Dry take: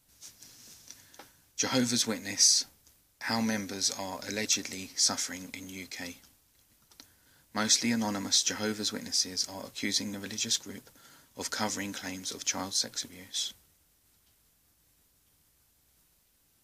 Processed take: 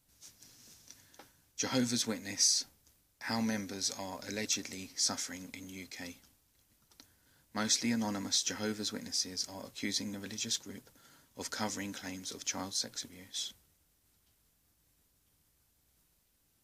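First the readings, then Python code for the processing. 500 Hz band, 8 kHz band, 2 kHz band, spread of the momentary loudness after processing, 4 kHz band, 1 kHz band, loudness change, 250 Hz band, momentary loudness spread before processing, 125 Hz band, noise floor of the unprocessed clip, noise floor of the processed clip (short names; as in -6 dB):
-4.0 dB, -5.5 dB, -5.5 dB, 15 LU, -5.5 dB, -5.0 dB, -5.0 dB, -3.0 dB, 16 LU, -2.5 dB, -69 dBFS, -73 dBFS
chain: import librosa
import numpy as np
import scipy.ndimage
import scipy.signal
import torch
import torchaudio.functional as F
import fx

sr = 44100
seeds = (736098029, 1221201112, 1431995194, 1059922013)

y = fx.low_shelf(x, sr, hz=490.0, db=3.0)
y = F.gain(torch.from_numpy(y), -5.5).numpy()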